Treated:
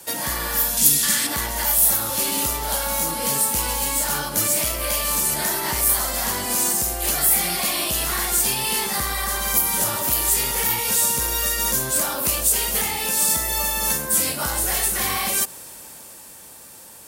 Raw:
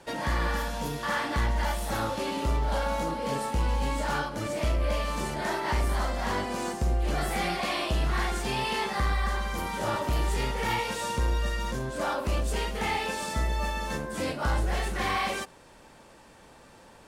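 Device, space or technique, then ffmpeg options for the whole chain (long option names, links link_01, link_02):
FM broadcast chain: -filter_complex "[0:a]highpass=53,dynaudnorm=framelen=170:gausssize=21:maxgain=7.5dB,acrossover=split=260|770[link_01][link_02][link_03];[link_01]acompressor=threshold=-33dB:ratio=4[link_04];[link_02]acompressor=threshold=-35dB:ratio=4[link_05];[link_03]acompressor=threshold=-30dB:ratio=4[link_06];[link_04][link_05][link_06]amix=inputs=3:normalize=0,aemphasis=mode=production:type=50fm,alimiter=limit=-18dB:level=0:latency=1:release=270,asoftclip=type=hard:threshold=-21.5dB,lowpass=frequency=15000:width=0.5412,lowpass=frequency=15000:width=1.3066,aemphasis=mode=production:type=50fm,asettb=1/sr,asplit=3[link_07][link_08][link_09];[link_07]atrim=end=0.774[link_10];[link_08]atrim=start=0.77:end=1.27,asetpts=PTS-STARTPTS,afade=type=in:duration=0.004:curve=qsin,afade=type=out:start_time=0.496:duration=0.004:curve=qsin,equalizer=frequency=250:width_type=o:width=1:gain=6,equalizer=frequency=500:width_type=o:width=1:gain=-6,equalizer=frequency=1000:width_type=o:width=1:gain=-8,equalizer=frequency=2000:width_type=o:width=1:gain=4,equalizer=frequency=4000:width_type=o:width=1:gain=5,equalizer=frequency=8000:width_type=o:width=1:gain=9[link_11];[link_09]atrim=start=1.266[link_12];[link_10][link_11]acrossfade=duration=0.004:curve1=hsin:curve2=qsin[link_13];[link_13][link_12]acrossfade=duration=0.004:curve1=qsin:curve2=hsin,volume=2dB"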